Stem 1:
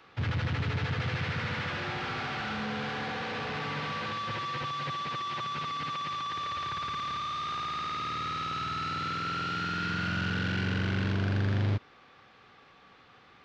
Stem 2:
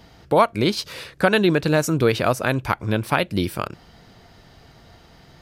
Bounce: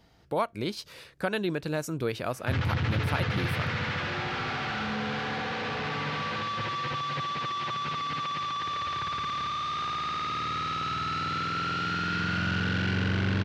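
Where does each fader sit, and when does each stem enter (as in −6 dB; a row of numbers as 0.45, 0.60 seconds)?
+2.5, −12.0 decibels; 2.30, 0.00 seconds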